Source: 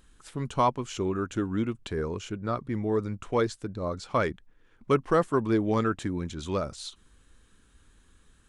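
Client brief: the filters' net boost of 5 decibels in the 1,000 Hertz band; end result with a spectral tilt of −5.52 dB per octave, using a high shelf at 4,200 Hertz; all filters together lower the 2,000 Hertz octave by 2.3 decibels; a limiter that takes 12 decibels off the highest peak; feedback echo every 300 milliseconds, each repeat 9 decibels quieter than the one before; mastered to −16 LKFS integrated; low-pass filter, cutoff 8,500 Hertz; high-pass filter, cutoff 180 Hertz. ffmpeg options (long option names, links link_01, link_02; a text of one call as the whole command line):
ffmpeg -i in.wav -af "highpass=180,lowpass=8500,equalizer=frequency=1000:width_type=o:gain=8,equalizer=frequency=2000:width_type=o:gain=-7,highshelf=frequency=4200:gain=-3,alimiter=limit=-20dB:level=0:latency=1,aecho=1:1:300|600|900|1200:0.355|0.124|0.0435|0.0152,volume=16.5dB" out.wav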